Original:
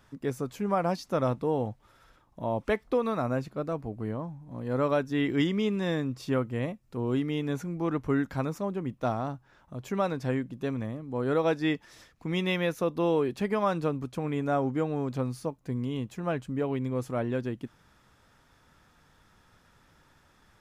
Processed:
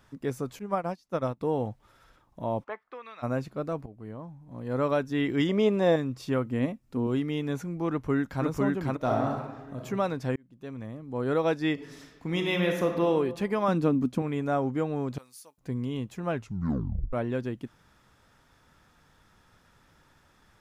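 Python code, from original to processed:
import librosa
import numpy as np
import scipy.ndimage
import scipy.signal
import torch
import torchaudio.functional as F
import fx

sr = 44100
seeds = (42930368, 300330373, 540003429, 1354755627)

y = fx.upward_expand(x, sr, threshold_db=-37.0, expansion=2.5, at=(0.59, 1.41))
y = fx.bandpass_q(y, sr, hz=fx.line((2.63, 850.0), (3.22, 3100.0)), q=2.3, at=(2.63, 3.22), fade=0.02)
y = fx.peak_eq(y, sr, hz=630.0, db=14.5, octaves=1.1, at=(5.49, 5.96))
y = fx.peak_eq(y, sr, hz=260.0, db=10.0, octaves=0.33, at=(6.46, 7.07))
y = fx.echo_throw(y, sr, start_s=7.91, length_s=0.55, ms=500, feedback_pct=25, wet_db=-0.5)
y = fx.reverb_throw(y, sr, start_s=8.96, length_s=0.84, rt60_s=0.99, drr_db=0.5)
y = fx.reverb_throw(y, sr, start_s=11.73, length_s=1.32, rt60_s=1.2, drr_db=2.5)
y = fx.peak_eq(y, sr, hz=240.0, db=14.0, octaves=0.77, at=(13.68, 14.22))
y = fx.differentiator(y, sr, at=(15.18, 15.58))
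y = fx.edit(y, sr, fx.fade_in_from(start_s=3.86, length_s=0.97, floor_db=-12.5),
    fx.fade_in_span(start_s=10.36, length_s=0.86),
    fx.tape_stop(start_s=16.33, length_s=0.8), tone=tone)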